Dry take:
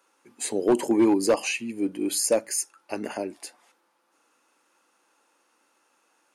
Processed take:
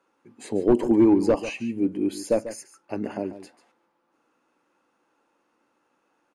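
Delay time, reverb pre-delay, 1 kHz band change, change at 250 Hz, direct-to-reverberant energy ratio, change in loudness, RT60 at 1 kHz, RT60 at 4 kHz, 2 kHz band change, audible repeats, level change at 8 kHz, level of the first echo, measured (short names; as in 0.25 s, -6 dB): 0.143 s, none, -2.0 dB, +3.0 dB, none, +1.5 dB, none, none, -5.5 dB, 1, -14.0 dB, -13.0 dB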